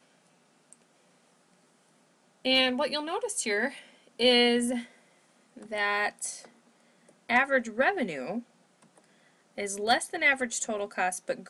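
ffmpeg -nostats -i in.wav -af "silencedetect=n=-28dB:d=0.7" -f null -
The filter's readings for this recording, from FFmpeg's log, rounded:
silence_start: 0.00
silence_end: 2.45 | silence_duration: 2.45
silence_start: 4.79
silence_end: 5.73 | silence_duration: 0.94
silence_start: 6.29
silence_end: 7.30 | silence_duration: 1.00
silence_start: 8.39
silence_end: 9.58 | silence_duration: 1.20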